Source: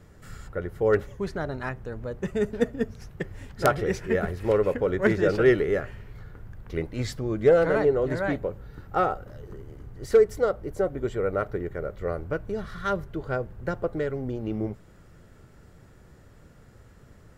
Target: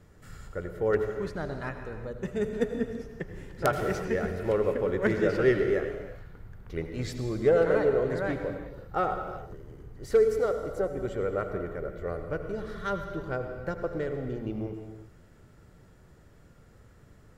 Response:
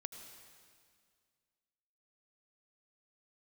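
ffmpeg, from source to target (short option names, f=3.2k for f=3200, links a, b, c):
-filter_complex "[0:a]asettb=1/sr,asplit=3[a][b][c];[a]atrim=end=2.654[d];[b]atrim=start=2.65:end=3.65,asetpts=PTS-STARTPTS,afade=t=in:d=0.004:c=qsin,afade=t=out:st=0.996:d=0.004:c=qsin,acrossover=split=2800[e][f];[f]acompressor=threshold=-54dB:ratio=4:attack=1:release=60[g];[e][g]amix=inputs=2:normalize=0[h];[c]atrim=start=3.646[i];[d][h]acrossfade=d=0.004:c1=hsin:c2=qsin[j];[j][i]acrossfade=d=0.004:c1=qsin:c2=hsin[k];[1:a]atrim=start_sample=2205,afade=t=out:st=0.44:d=0.01,atrim=end_sample=19845[l];[k][l]afir=irnorm=-1:irlink=0"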